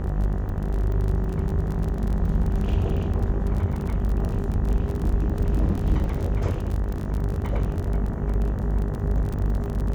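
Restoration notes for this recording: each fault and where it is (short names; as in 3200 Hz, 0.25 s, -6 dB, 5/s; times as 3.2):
buzz 50 Hz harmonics 39 -28 dBFS
crackle 34/s -28 dBFS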